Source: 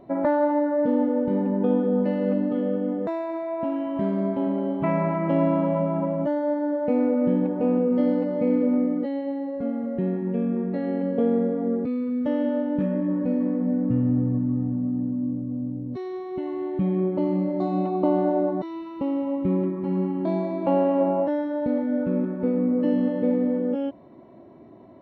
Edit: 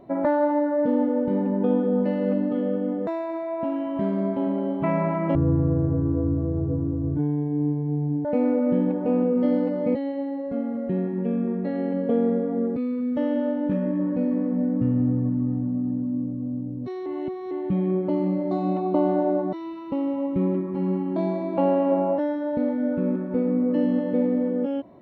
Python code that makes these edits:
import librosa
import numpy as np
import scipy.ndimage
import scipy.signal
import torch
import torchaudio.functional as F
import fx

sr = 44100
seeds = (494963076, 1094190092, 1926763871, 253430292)

y = fx.edit(x, sr, fx.speed_span(start_s=5.35, length_s=1.45, speed=0.5),
    fx.cut(start_s=8.5, length_s=0.54),
    fx.reverse_span(start_s=16.15, length_s=0.45), tone=tone)